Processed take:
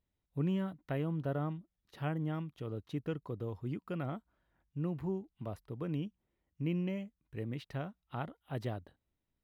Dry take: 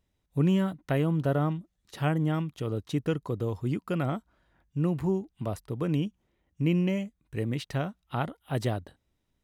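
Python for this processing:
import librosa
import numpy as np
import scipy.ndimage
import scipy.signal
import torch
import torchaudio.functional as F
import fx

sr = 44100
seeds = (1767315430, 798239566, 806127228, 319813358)

y = fx.peak_eq(x, sr, hz=8000.0, db=-11.0, octaves=1.2)
y = F.gain(torch.from_numpy(y), -9.0).numpy()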